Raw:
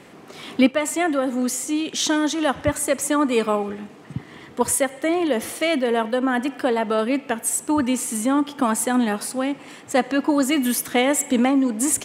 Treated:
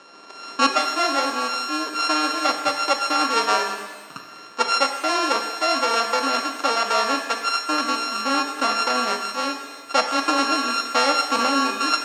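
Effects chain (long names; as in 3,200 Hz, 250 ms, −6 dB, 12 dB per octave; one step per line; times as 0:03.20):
samples sorted by size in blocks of 32 samples
loudspeaker in its box 430–7,100 Hz, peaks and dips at 660 Hz +3 dB, 1,200 Hz +7 dB, 5,400 Hz +4 dB
reverb with rising layers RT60 1.2 s, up +7 semitones, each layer −8 dB, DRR 6 dB
level −1.5 dB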